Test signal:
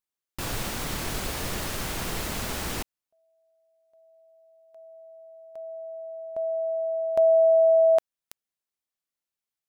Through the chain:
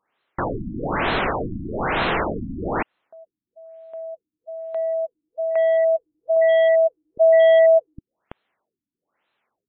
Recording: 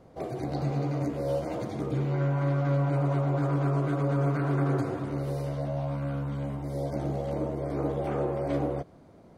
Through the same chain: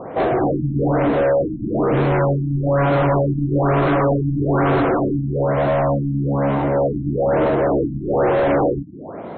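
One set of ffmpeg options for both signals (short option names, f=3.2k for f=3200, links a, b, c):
-filter_complex "[0:a]asplit=2[a][b];[b]highpass=f=720:p=1,volume=30dB,asoftclip=type=tanh:threshold=-14.5dB[c];[a][c]amix=inputs=2:normalize=0,lowpass=f=1.5k:p=1,volume=-6dB,afftfilt=real='re*lt(b*sr/1024,300*pow(4300/300,0.5+0.5*sin(2*PI*1.1*pts/sr)))':imag='im*lt(b*sr/1024,300*pow(4300/300,0.5+0.5*sin(2*PI*1.1*pts/sr)))':win_size=1024:overlap=0.75,volume=5.5dB"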